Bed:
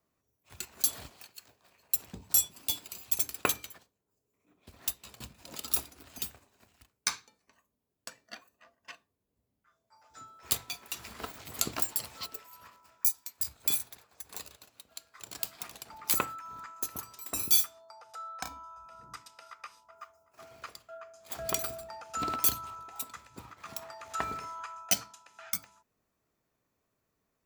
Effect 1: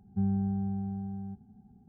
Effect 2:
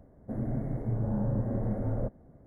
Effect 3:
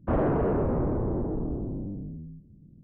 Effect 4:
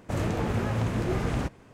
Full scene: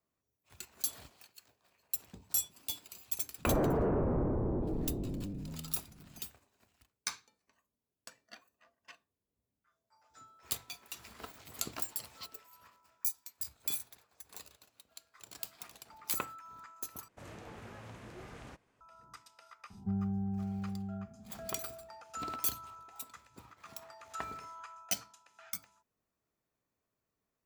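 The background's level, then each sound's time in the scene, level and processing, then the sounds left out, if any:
bed -7 dB
3.38 add 3 -5 dB
17.08 replace with 4 -15.5 dB + low shelf 460 Hz -9.5 dB
19.7 add 1 -4.5 dB + three-band squash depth 40%
not used: 2

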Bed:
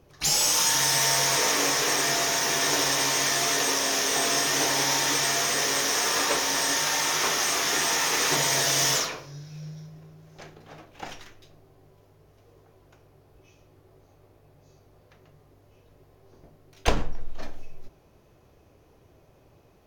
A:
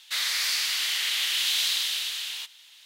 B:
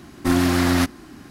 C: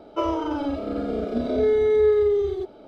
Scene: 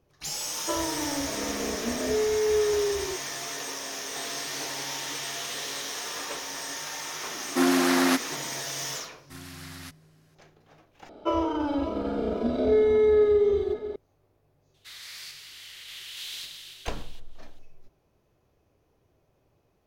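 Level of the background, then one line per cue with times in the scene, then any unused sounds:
bed -10.5 dB
0.51 add C -6 dB
4.04 add A -14.5 dB
7.31 add B -1.5 dB + HPF 250 Hz 24 dB/oct
9.05 add B -10 dB + passive tone stack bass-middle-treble 5-5-5
11.09 replace with C -1.5 dB + regenerating reverse delay 0.27 s, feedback 68%, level -12.5 dB
14.74 add A -12.5 dB + random-step tremolo

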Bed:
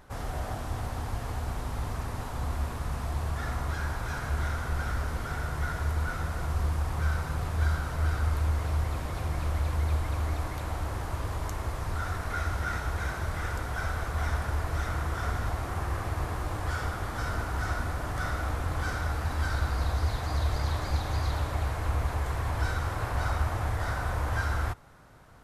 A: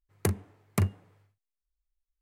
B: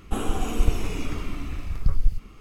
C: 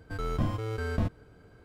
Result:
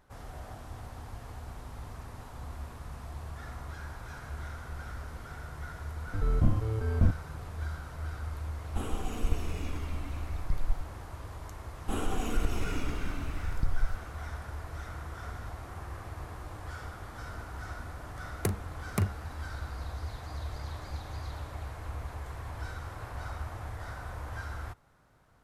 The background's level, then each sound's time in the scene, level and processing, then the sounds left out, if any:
bed -10 dB
6.03 add C -6 dB + tilt -3 dB/oct
8.64 add B -9 dB
11.77 add B -4.5 dB + compressor 2:1, threshold -18 dBFS
18.2 add A -3 dB

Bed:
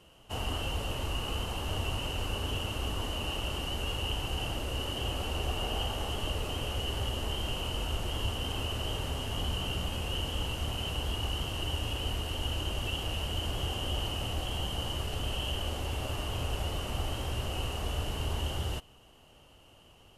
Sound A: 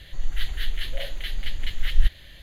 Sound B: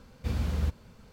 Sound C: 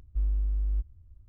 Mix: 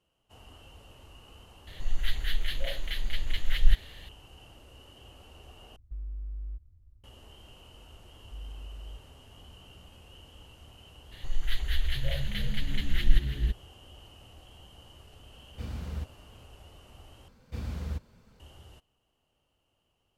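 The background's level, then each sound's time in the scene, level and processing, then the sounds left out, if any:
bed -18.5 dB
1.67 add A -2 dB
5.76 replace with C -5 dB + limiter -28 dBFS
8.16 add C -15 dB
11.11 add A -3 dB, fades 0.02 s + frequency-shifting echo 0.326 s, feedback 58%, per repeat -73 Hz, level -11 dB
15.34 add B -7.5 dB
17.28 replace with B -6 dB

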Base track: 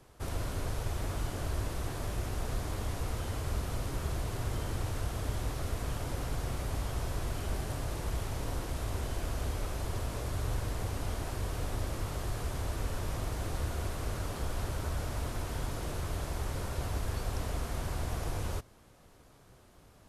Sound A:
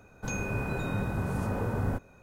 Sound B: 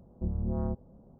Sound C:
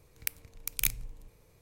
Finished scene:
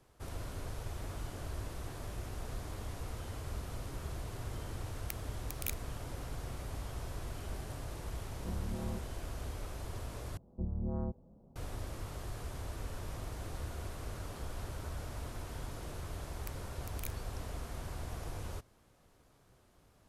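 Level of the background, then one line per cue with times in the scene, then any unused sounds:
base track -7 dB
4.83 add C -10.5 dB
8.24 add B -8 dB
10.37 replace with B -5 dB
16.2 add C -17.5 dB
not used: A

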